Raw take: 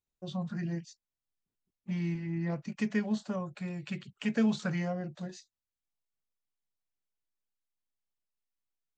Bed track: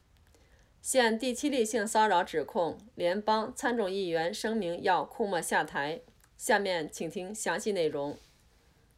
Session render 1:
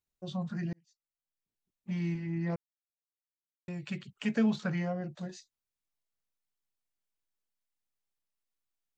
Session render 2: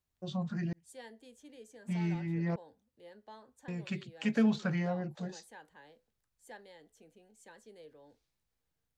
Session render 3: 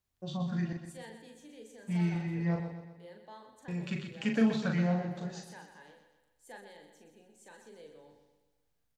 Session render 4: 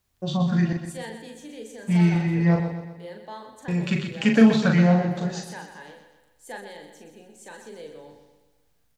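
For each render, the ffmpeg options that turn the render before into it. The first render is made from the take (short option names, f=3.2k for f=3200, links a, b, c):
-filter_complex "[0:a]asettb=1/sr,asplit=3[a][b][c];[a]atrim=end=4.384[d];[b]atrim=start=4.38:end=5.02,asetpts=PTS-STARTPTS,afade=t=in:d=0.004:c=qsin,afade=t=out:st=0.636:d=0.004:c=qsin,adynamicsmooth=sensitivity=3:basefreq=5.6k[e];[c]atrim=start=5.016[f];[d][e]acrossfade=d=0.004:c1=hsin:c2=qsin[g];[g][f]acrossfade=d=0.004:c1=qsin:c2=hsin,asplit=4[h][i][j][k];[h]atrim=end=0.73,asetpts=PTS-STARTPTS,afade=t=out:st=0.726:d=0.004:c=hsin[l];[i]atrim=start=0.73:end=2.56,asetpts=PTS-STARTPTS,afade=t=in:d=1.29,afade=t=out:st=1.826:d=0.004:c=hsin[m];[j]atrim=start=2.56:end=3.68,asetpts=PTS-STARTPTS,volume=0[n];[k]atrim=start=3.68,asetpts=PTS-STARTPTS,afade=t=in:d=0.004:c=hsin[o];[l][m][n][o]concat=n=4:v=0:a=1"
-filter_complex "[1:a]volume=-24.5dB[a];[0:a][a]amix=inputs=2:normalize=0"
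-filter_complex "[0:a]asplit=2[a][b];[b]adelay=40,volume=-4.5dB[c];[a][c]amix=inputs=2:normalize=0,aecho=1:1:125|250|375|500|625|750:0.355|0.177|0.0887|0.0444|0.0222|0.0111"
-af "volume=11.5dB"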